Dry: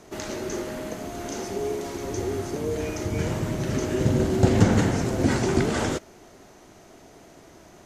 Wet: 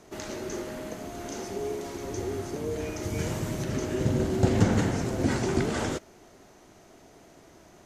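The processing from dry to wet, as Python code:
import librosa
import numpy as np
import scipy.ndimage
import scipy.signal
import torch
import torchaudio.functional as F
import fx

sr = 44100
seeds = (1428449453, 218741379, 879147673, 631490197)

y = fx.high_shelf(x, sr, hz=4500.0, db=7.0, at=(3.03, 3.64))
y = y * 10.0 ** (-4.0 / 20.0)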